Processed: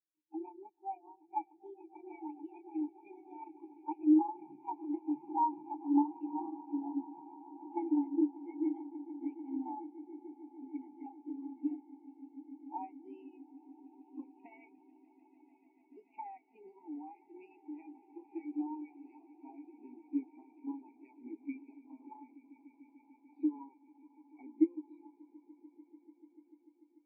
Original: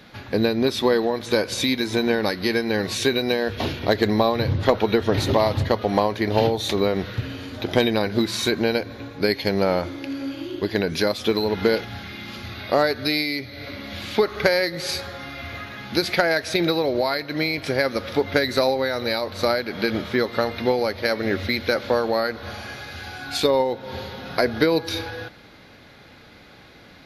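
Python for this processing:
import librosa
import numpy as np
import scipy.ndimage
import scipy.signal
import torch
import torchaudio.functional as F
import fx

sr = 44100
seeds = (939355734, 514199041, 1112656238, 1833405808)

p1 = fx.pitch_glide(x, sr, semitones=8.0, runs='ending unshifted')
p2 = fx.vowel_filter(p1, sr, vowel='u')
p3 = fx.low_shelf(p2, sr, hz=160.0, db=-7.5)
p4 = p3 + fx.echo_swell(p3, sr, ms=147, loudest=8, wet_db=-12, dry=0)
y = fx.spectral_expand(p4, sr, expansion=2.5)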